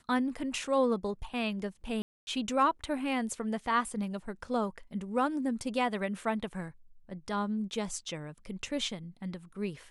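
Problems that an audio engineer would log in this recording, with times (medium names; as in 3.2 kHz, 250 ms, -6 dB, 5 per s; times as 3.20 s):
2.02–2.27 s: dropout 250 ms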